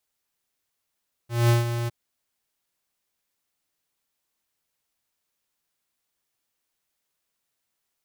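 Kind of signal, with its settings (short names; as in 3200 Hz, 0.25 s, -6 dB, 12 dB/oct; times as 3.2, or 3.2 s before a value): ADSR square 118 Hz, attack 0.204 s, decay 0.149 s, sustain -10 dB, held 0.59 s, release 20 ms -17 dBFS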